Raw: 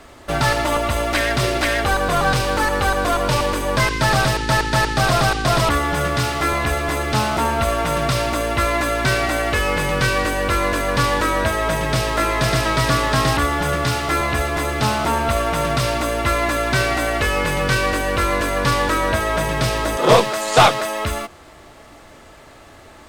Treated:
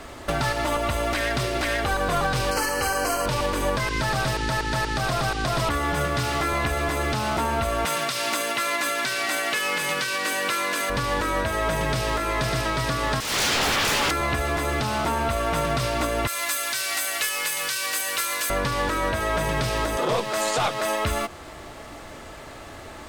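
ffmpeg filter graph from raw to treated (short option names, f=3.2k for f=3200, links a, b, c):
-filter_complex "[0:a]asettb=1/sr,asplit=3[a][b][c];[a]atrim=end=2.514[d];[b]atrim=start=2.51:end=3.26,asetpts=PTS-STARTPTS,afade=t=in:d=0.004:c=qsin,afade=t=out:st=0.746:d=0.004:c=qsin,asuperstop=centerf=3600:order=20:qfactor=4.7,bass=f=250:g=-5,treble=f=4k:g=10,asplit=2[e][f];[f]adelay=49,volume=-4.5dB[g];[e][g]amix=inputs=2:normalize=0,atrim=end_sample=33075[h];[c]atrim=start=3.256[i];[d][h]acrossfade=d=0.004:c1=hsin:c2=qsin[j];[j][i]acrossfade=d=0.004:c1=qsin:c2=hsin,asettb=1/sr,asplit=3[k][l][m];[k]atrim=end=7.854[n];[l]atrim=start=7.85:end=10.9,asetpts=PTS-STARTPTS,afade=t=in:d=0.004:c=qsin,afade=t=out:st=3.046:d=0.004:c=qsin,highpass=f=160:w=0.5412,highpass=f=160:w=1.3066,tiltshelf=f=1.2k:g=-6.5[o];[m]atrim=start=10.896[p];[n][o]acrossfade=d=0.004:c1=hsin:c2=qsin[q];[q][p]acrossfade=d=0.004:c1=qsin:c2=hsin,asettb=1/sr,asplit=3[r][s][t];[r]atrim=end=13.204[u];[s]atrim=start=13.2:end=14.11,asetpts=PTS-STARTPTS,afade=t=in:d=0.004:c=qsin,afade=t=out:st=0.906:d=0.004:c=qsin,equalizer=f=970:w=1.8:g=14,aeval=exprs='0.112*(abs(mod(val(0)/0.112+3,4)-2)-1)':c=same[v];[t]atrim=start=14.106[w];[u][v]acrossfade=d=0.004:c1=hsin:c2=qsin[x];[x][w]acrossfade=d=0.004:c1=qsin:c2=hsin,asettb=1/sr,asplit=3[y][z][aa];[y]atrim=end=16.274[ab];[z]atrim=start=16.27:end=18.5,asetpts=PTS-STARTPTS,afade=t=in:d=0.004:c=qsin,afade=t=out:st=2.226:d=0.004:c=qsin,aderivative,acontrast=49[ac];[aa]atrim=start=18.496[ad];[ab][ac]acrossfade=d=0.004:c1=hsin:c2=qsin[ae];[ae][ad]acrossfade=d=0.004:c1=qsin:c2=hsin,acompressor=threshold=-24dB:ratio=2.5,alimiter=limit=-18dB:level=0:latency=1:release=240,volume=3.5dB"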